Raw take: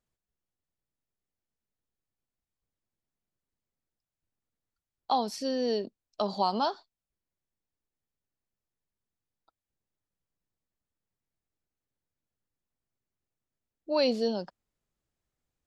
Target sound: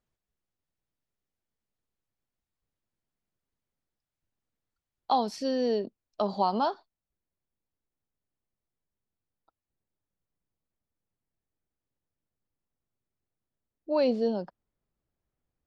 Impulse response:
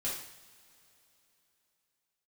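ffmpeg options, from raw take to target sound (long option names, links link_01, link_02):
-af "asetnsamples=nb_out_samples=441:pad=0,asendcmd='5.68 lowpass f 2000;6.74 lowpass f 1200',lowpass=frequency=4000:poles=1,volume=2dB"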